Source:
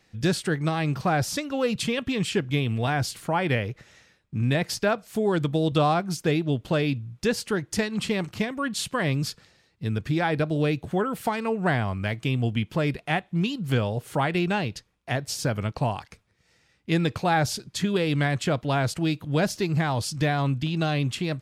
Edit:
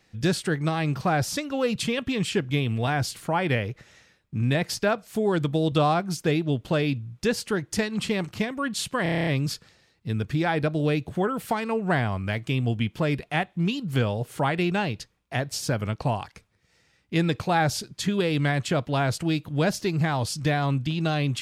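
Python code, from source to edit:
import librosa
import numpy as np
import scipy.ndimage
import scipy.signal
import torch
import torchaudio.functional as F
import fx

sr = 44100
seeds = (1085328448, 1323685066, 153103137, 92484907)

y = fx.edit(x, sr, fx.stutter(start_s=9.03, slice_s=0.03, count=9), tone=tone)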